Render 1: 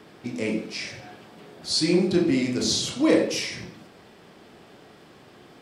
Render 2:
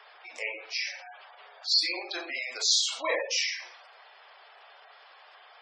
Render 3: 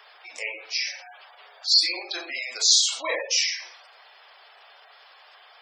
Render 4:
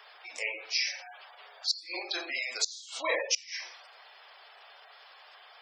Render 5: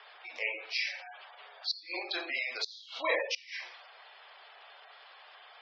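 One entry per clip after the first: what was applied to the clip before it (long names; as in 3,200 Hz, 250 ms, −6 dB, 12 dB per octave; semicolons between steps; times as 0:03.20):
high-pass filter 710 Hz 24 dB per octave; gate on every frequency bin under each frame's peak −15 dB strong; level +2 dB
high-shelf EQ 4,300 Hz +11 dB
gate with flip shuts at −12 dBFS, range −25 dB; level −2 dB
inverse Chebyshev low-pass filter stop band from 8,000 Hz, stop band 40 dB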